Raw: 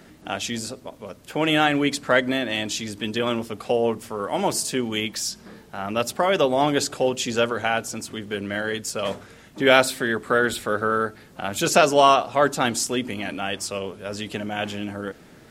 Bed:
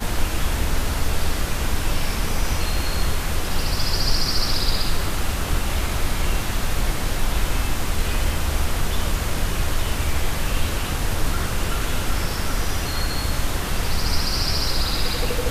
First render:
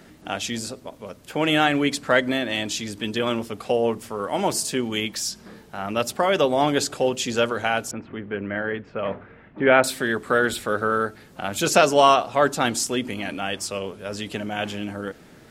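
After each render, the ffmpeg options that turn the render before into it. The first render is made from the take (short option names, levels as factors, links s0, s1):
-filter_complex "[0:a]asettb=1/sr,asplit=3[s0][s1][s2];[s0]atrim=end=7.914[s3];[s1]atrim=start=7.91:end=9.84,asetpts=PTS-STARTPTS,afade=t=in:d=0.004:c=qsin,afade=t=out:st=1.926:d=0.004:c=qsin,lowpass=f=2300:w=0.5412,lowpass=f=2300:w=1.3066[s4];[s2]atrim=start=9.836[s5];[s3][s4]acrossfade=d=0.004:c1=hsin:c2=qsin[s6];[s6][s5]acrossfade=d=0.004:c1=qsin:c2=hsin"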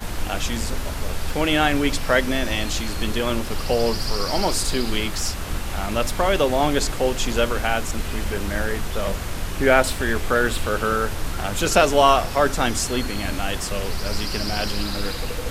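-filter_complex "[1:a]volume=0.562[s0];[0:a][s0]amix=inputs=2:normalize=0"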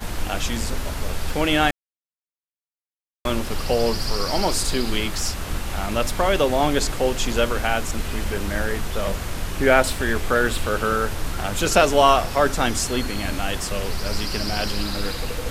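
-filter_complex "[0:a]asplit=3[s0][s1][s2];[s0]atrim=end=1.71,asetpts=PTS-STARTPTS,afade=t=out:st=1.706:d=0.004:c=hsin[s3];[s1]atrim=start=1.71:end=3.25,asetpts=PTS-STARTPTS,volume=0[s4];[s2]atrim=start=3.25,asetpts=PTS-STARTPTS,afade=t=in:d=0.004:c=hsin[s5];[s3][s4][s5]concat=n=3:v=0:a=1"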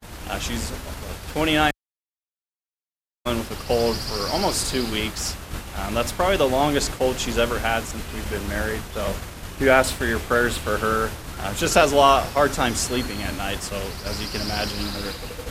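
-af "highpass=42,agate=range=0.0224:threshold=0.0631:ratio=3:detection=peak"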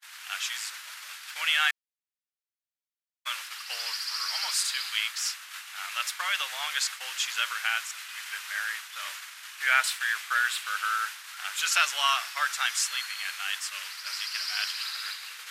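-af "highpass=f=1400:w=0.5412,highpass=f=1400:w=1.3066,highshelf=f=7200:g=-5"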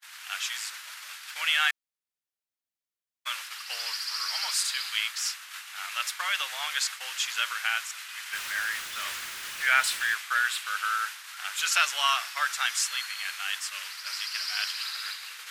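-filter_complex "[0:a]asettb=1/sr,asplit=3[s0][s1][s2];[s0]atrim=end=8.334[s3];[s1]atrim=start=8.33:end=10.15,asetpts=PTS-STARTPTS,afade=t=in:d=0.004:c=qsin,afade=t=out:st=1.816:d=0.004:c=qsin,aeval=exprs='val(0)+0.5*0.0141*sgn(val(0))':c=same[s4];[s2]atrim=start=10.146[s5];[s3][s4]acrossfade=d=0.004:c1=hsin:c2=qsin[s6];[s6][s5]acrossfade=d=0.004:c1=qsin:c2=hsin"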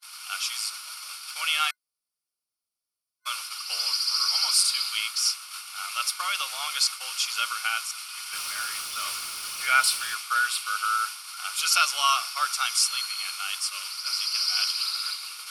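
-af "superequalizer=10b=1.58:11b=0.251:14b=2.51:16b=2.82"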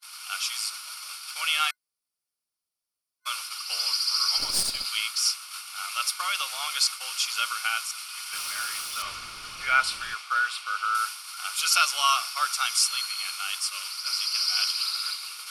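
-filter_complex "[0:a]asplit=3[s0][s1][s2];[s0]afade=t=out:st=4.37:d=0.02[s3];[s1]aeval=exprs='(tanh(5.62*val(0)+0.75)-tanh(0.75))/5.62':c=same,afade=t=in:st=4.37:d=0.02,afade=t=out:st=4.84:d=0.02[s4];[s2]afade=t=in:st=4.84:d=0.02[s5];[s3][s4][s5]amix=inputs=3:normalize=0,asettb=1/sr,asplit=3[s6][s7][s8];[s6]atrim=end=9.024[s9];[s7]atrim=start=9.02:end=10.95,asetpts=PTS-STARTPTS,afade=t=in:d=0.004:c=qsin,afade=t=out:st=1.926:d=0.004:c=qsin,aemphasis=mode=reproduction:type=bsi[s10];[s8]atrim=start=10.946[s11];[s9][s10]acrossfade=d=0.004:c1=hsin:c2=qsin[s12];[s12][s11]acrossfade=d=0.004:c1=qsin:c2=hsin"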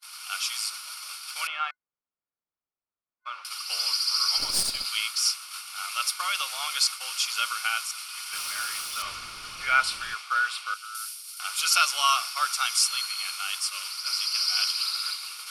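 -filter_complex "[0:a]asettb=1/sr,asplit=3[s0][s1][s2];[s0]atrim=end=1.474[s3];[s1]atrim=start=1.47:end=3.45,asetpts=PTS-STARTPTS,afade=t=in:d=0.004:c=qsin,afade=t=out:st=1.976:d=0.004:c=qsin,lowpass=1600[s4];[s2]atrim=start=3.446[s5];[s3][s4]acrossfade=d=0.004:c1=hsin:c2=qsin[s6];[s6][s5]acrossfade=d=0.004:c1=qsin:c2=hsin,asettb=1/sr,asplit=3[s7][s8][s9];[s7]atrim=end=10.744[s10];[s8]atrim=start=10.74:end=11.4,asetpts=PTS-STARTPTS,afade=t=in:d=0.004:c=qsin,afade=t=out:st=0.656:d=0.004:c=qsin,aderivative[s11];[s9]atrim=start=11.396[s12];[s10][s11]acrossfade=d=0.004:c1=hsin:c2=qsin[s13];[s13][s12]acrossfade=d=0.004:c1=qsin:c2=hsin"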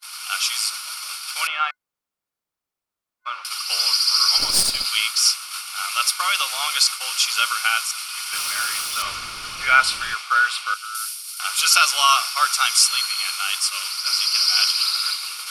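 -af "volume=2.37,alimiter=limit=0.708:level=0:latency=1"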